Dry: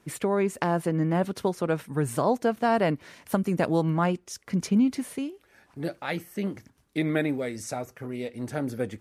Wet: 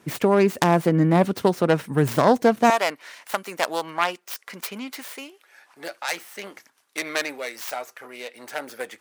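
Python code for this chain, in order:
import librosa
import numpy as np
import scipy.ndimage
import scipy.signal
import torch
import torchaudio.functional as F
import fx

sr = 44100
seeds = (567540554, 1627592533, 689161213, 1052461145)

y = fx.tracing_dist(x, sr, depth_ms=0.38)
y = fx.highpass(y, sr, hz=fx.steps((0.0, 100.0), (2.7, 830.0)), slope=12)
y = y * librosa.db_to_amplitude(7.0)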